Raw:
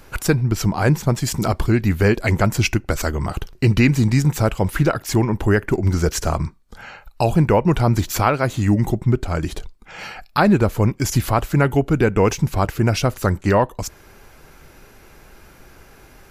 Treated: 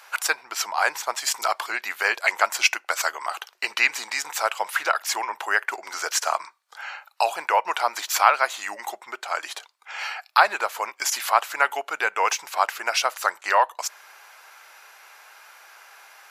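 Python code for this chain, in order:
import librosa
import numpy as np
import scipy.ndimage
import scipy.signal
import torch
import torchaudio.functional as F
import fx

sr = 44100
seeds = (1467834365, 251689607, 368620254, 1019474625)

y = scipy.signal.sosfilt(scipy.signal.butter(4, 780.0, 'highpass', fs=sr, output='sos'), x)
y = fx.high_shelf(y, sr, hz=9300.0, db=-6.0)
y = y * 10.0 ** (3.5 / 20.0)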